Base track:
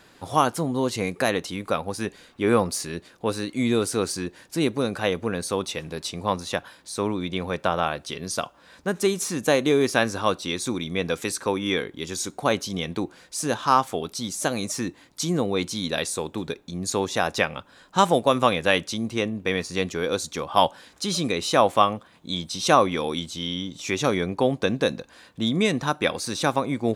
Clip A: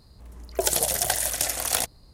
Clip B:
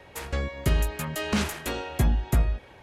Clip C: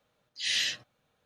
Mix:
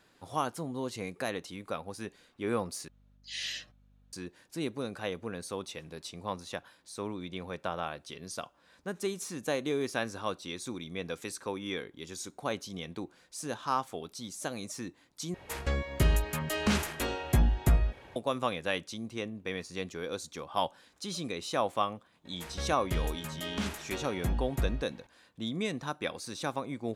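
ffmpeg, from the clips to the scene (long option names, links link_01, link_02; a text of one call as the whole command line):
ffmpeg -i bed.wav -i cue0.wav -i cue1.wav -i cue2.wav -filter_complex "[2:a]asplit=2[link_01][link_02];[0:a]volume=-11.5dB[link_03];[3:a]aeval=exprs='val(0)+0.00224*(sin(2*PI*50*n/s)+sin(2*PI*2*50*n/s)/2+sin(2*PI*3*50*n/s)/3+sin(2*PI*4*50*n/s)/4+sin(2*PI*5*50*n/s)/5)':channel_layout=same[link_04];[link_03]asplit=3[link_05][link_06][link_07];[link_05]atrim=end=2.884[link_08];[link_04]atrim=end=1.25,asetpts=PTS-STARTPTS,volume=-8.5dB[link_09];[link_06]atrim=start=4.126:end=15.344[link_10];[link_01]atrim=end=2.82,asetpts=PTS-STARTPTS,volume=-2dB[link_11];[link_07]atrim=start=18.156[link_12];[link_02]atrim=end=2.82,asetpts=PTS-STARTPTS,volume=-9dB,afade=type=in:duration=0.004:curve=hsin,afade=type=out:start_time=2.816:duration=0.004:curve=hsin,adelay=22250[link_13];[link_08][link_09]acrossfade=duration=0.004:curve1=hsin:curve2=hsin[link_14];[link_14][link_10]acrossfade=duration=0.004:curve1=hsin:curve2=hsin[link_15];[link_15][link_11]acrossfade=duration=0.004:curve1=hsin:curve2=hsin[link_16];[link_16][link_12]acrossfade=duration=0.004:curve1=hsin:curve2=hsin[link_17];[link_17][link_13]amix=inputs=2:normalize=0" out.wav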